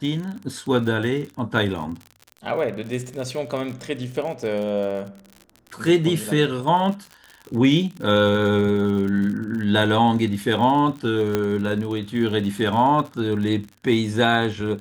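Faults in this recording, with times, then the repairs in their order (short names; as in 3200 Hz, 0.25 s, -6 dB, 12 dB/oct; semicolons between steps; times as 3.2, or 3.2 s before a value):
crackle 55/s -30 dBFS
11.35 pop -8 dBFS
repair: de-click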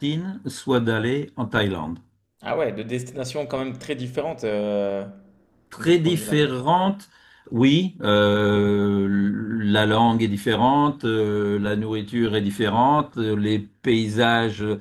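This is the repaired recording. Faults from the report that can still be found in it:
none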